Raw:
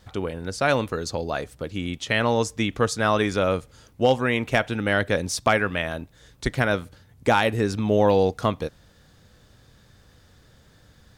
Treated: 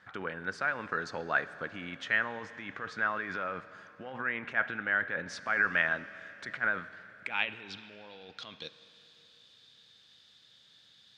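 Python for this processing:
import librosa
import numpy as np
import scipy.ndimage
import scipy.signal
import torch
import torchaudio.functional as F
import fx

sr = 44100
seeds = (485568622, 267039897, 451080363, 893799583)

y = fx.env_lowpass_down(x, sr, base_hz=2900.0, full_db=-17.5)
y = fx.peak_eq(y, sr, hz=160.0, db=12.5, octaves=2.3)
y = fx.over_compress(y, sr, threshold_db=-20.0, ratio=-1.0)
y = fx.filter_sweep_bandpass(y, sr, from_hz=1600.0, to_hz=3600.0, start_s=6.79, end_s=7.82, q=3.5)
y = fx.rev_schroeder(y, sr, rt60_s=3.4, comb_ms=30, drr_db=14.5)
y = y * librosa.db_to_amplitude(3.0)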